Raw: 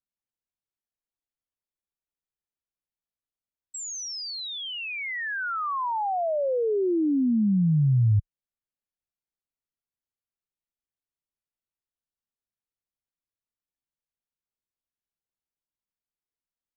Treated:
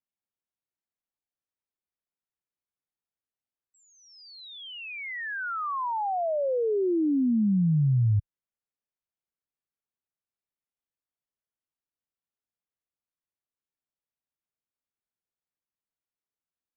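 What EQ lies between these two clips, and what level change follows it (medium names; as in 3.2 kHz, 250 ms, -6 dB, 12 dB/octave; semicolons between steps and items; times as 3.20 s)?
distance through air 370 m; bass shelf 62 Hz -9 dB; 0.0 dB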